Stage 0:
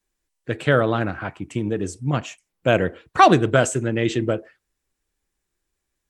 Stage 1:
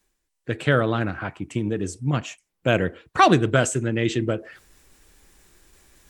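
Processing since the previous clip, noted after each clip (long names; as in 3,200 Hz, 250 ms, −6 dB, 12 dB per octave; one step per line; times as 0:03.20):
reversed playback
upward compression, threshold −35 dBFS
reversed playback
dynamic equaliser 690 Hz, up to −4 dB, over −30 dBFS, Q 0.81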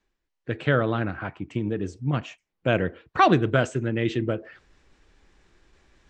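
Gaussian smoothing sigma 1.7 samples
level −2 dB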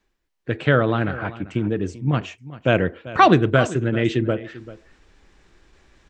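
single-tap delay 391 ms −17 dB
level +4.5 dB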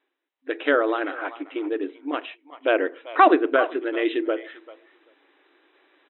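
far-end echo of a speakerphone 390 ms, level −19 dB
brick-wall band-pass 260–4,000 Hz
treble cut that deepens with the level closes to 2,300 Hz, closed at −14.5 dBFS
level −1 dB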